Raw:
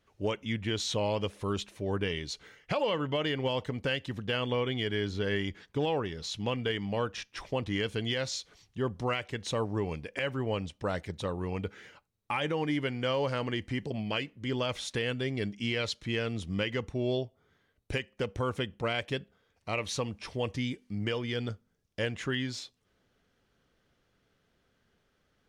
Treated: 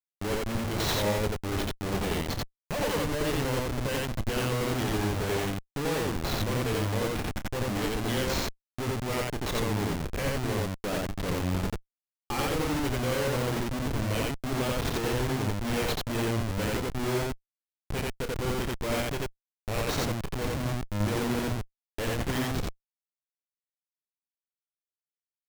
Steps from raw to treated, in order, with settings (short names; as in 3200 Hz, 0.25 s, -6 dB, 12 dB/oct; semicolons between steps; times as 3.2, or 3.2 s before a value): Schmitt trigger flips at -33 dBFS; loudspeakers at several distances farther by 10 m -10 dB, 30 m 0 dB; gain +3 dB